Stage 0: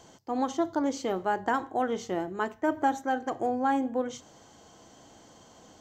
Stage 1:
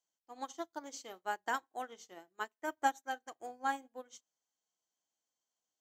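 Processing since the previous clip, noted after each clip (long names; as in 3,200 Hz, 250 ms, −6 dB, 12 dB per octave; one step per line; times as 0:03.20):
spectral tilt +4 dB per octave
expander for the loud parts 2.5 to 1, over −48 dBFS
level −2.5 dB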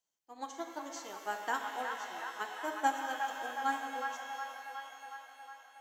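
delay with a band-pass on its return 365 ms, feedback 68%, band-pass 1,500 Hz, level −4.5 dB
reverb with rising layers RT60 2.4 s, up +12 semitones, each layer −8 dB, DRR 4.5 dB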